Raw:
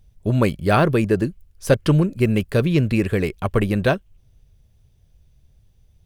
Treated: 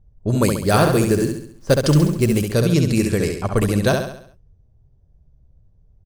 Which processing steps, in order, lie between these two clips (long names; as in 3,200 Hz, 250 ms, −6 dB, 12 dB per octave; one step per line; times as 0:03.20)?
low-pass that shuts in the quiet parts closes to 870 Hz, open at −14.5 dBFS
high shelf with overshoot 4,100 Hz +12 dB, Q 1.5
0:00.50–0:02.40: log-companded quantiser 6 bits
repeating echo 68 ms, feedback 47%, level −5 dB